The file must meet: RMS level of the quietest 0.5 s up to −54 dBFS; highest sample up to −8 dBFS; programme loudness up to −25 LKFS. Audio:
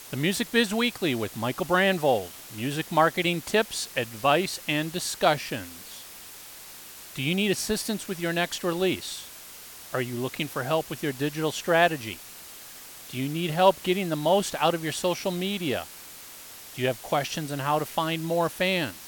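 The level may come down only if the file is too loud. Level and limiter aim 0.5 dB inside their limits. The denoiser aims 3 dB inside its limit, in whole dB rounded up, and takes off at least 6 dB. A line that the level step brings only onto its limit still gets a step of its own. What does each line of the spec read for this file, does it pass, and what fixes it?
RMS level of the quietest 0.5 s −44 dBFS: out of spec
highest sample −6.5 dBFS: out of spec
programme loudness −26.5 LKFS: in spec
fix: broadband denoise 13 dB, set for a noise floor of −44 dBFS
brickwall limiter −8.5 dBFS

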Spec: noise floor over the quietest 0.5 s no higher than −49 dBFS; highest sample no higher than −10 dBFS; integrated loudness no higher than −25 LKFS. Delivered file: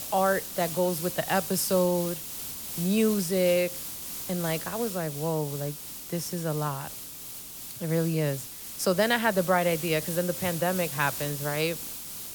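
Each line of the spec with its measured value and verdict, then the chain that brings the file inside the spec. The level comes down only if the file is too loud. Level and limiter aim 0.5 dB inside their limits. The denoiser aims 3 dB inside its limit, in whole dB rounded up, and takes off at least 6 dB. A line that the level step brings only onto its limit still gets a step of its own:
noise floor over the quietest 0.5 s −41 dBFS: out of spec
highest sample −11.0 dBFS: in spec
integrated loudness −28.0 LKFS: in spec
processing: broadband denoise 11 dB, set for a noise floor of −41 dBFS

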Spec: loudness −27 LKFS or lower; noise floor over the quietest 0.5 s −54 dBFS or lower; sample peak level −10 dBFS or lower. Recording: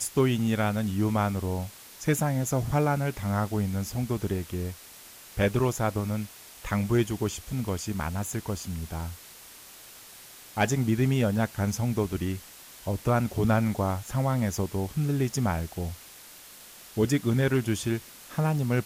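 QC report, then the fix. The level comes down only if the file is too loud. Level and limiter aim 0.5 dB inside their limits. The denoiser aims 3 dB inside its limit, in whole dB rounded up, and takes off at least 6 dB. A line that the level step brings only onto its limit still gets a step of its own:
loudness −28.0 LKFS: in spec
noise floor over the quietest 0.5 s −48 dBFS: out of spec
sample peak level −12.5 dBFS: in spec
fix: broadband denoise 9 dB, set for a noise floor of −48 dBFS

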